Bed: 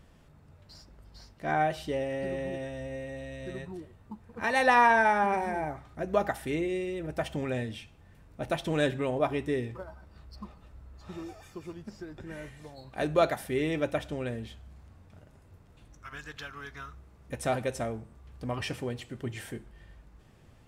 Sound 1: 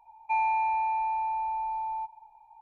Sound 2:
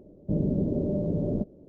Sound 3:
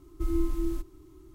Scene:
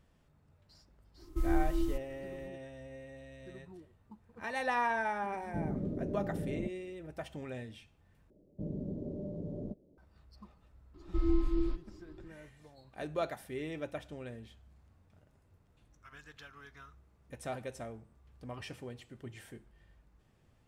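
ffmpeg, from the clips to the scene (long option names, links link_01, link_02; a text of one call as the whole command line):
ffmpeg -i bed.wav -i cue0.wav -i cue1.wav -i cue2.wav -filter_complex "[3:a]asplit=2[link_01][link_02];[2:a]asplit=2[link_03][link_04];[0:a]volume=-10.5dB[link_05];[link_02]aresample=11025,aresample=44100[link_06];[link_05]asplit=2[link_07][link_08];[link_07]atrim=end=8.304[link_09];[link_04]atrim=end=1.68,asetpts=PTS-STARTPTS,volume=-13dB[link_10];[link_08]atrim=start=9.976[link_11];[link_01]atrim=end=1.34,asetpts=PTS-STARTPTS,volume=-2.5dB,afade=type=in:duration=0.05,afade=type=out:start_time=1.29:duration=0.05,adelay=1160[link_12];[link_03]atrim=end=1.68,asetpts=PTS-STARTPTS,volume=-10dB,afade=type=in:duration=0.004:curve=hsin,afade=type=out:start_time=1.676:duration=0.004:curve=hsin,adelay=231525S[link_13];[link_06]atrim=end=1.34,asetpts=PTS-STARTPTS,volume=-1.5dB,afade=type=in:duration=0.004:curve=hsin,afade=type=out:start_time=1.336:duration=0.004:curve=hsin,adelay=10940[link_14];[link_09][link_10]acrossfade=duration=0.004:curve1=hsin:curve2=hsin[link_15];[link_15][link_11]acrossfade=duration=0.004:curve1=hsin:curve2=hsin[link_16];[link_16][link_12][link_13][link_14]amix=inputs=4:normalize=0" out.wav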